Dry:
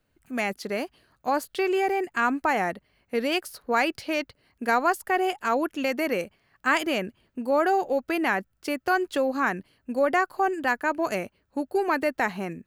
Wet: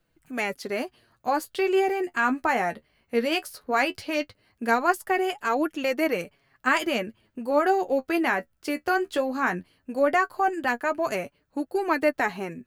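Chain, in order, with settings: flange 0.17 Hz, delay 5.8 ms, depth 7.7 ms, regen +36%; gain +4 dB

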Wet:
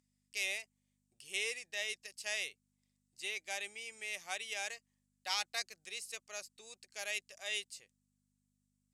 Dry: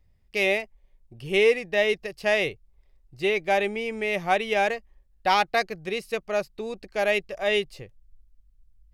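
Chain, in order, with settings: hum 50 Hz, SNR 14 dB; band-pass 7800 Hz, Q 2.7; gain +7 dB

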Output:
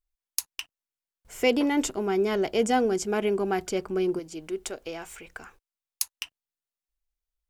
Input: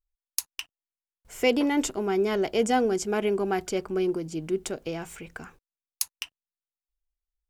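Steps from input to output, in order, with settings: 4.19–6.23 bell 160 Hz -12.5 dB 1.8 oct

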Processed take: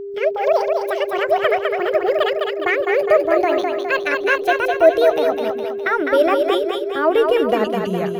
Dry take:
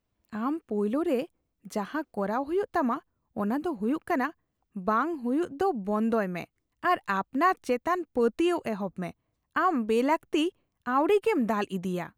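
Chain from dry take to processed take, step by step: speed glide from 200% -> 97%; thirty-one-band EQ 250 Hz -7 dB, 630 Hz +10 dB, 1000 Hz -7 dB, 8000 Hz -12 dB; whine 400 Hz -33 dBFS; split-band echo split 410 Hz, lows 0.141 s, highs 0.206 s, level -4 dB; gain +6 dB

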